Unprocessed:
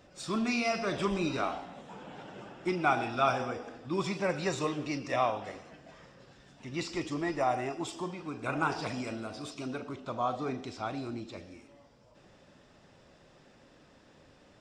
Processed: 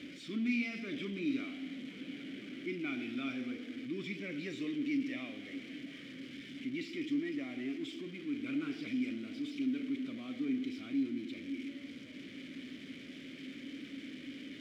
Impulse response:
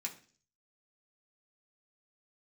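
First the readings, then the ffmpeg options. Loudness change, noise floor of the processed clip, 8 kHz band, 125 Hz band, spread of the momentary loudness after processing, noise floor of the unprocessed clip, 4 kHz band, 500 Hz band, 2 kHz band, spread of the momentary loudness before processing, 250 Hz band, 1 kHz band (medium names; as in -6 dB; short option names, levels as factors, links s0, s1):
-6.5 dB, -50 dBFS, under -10 dB, -11.0 dB, 11 LU, -60 dBFS, -4.5 dB, -12.5 dB, -5.5 dB, 18 LU, +1.0 dB, -25.0 dB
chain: -filter_complex "[0:a]aeval=exprs='val(0)+0.5*0.0224*sgn(val(0))':c=same,asplit=3[s0][s1][s2];[s0]bandpass=f=270:t=q:w=8,volume=1[s3];[s1]bandpass=f=2290:t=q:w=8,volume=0.501[s4];[s2]bandpass=f=3010:t=q:w=8,volume=0.355[s5];[s3][s4][s5]amix=inputs=3:normalize=0,volume=1.5"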